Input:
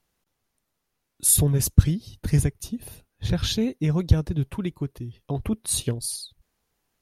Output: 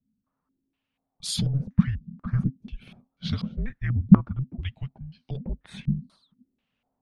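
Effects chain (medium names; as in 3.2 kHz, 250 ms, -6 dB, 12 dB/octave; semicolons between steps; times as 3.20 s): frequency shift -270 Hz; step-sequenced low-pass 4.1 Hz 210–4400 Hz; trim -5 dB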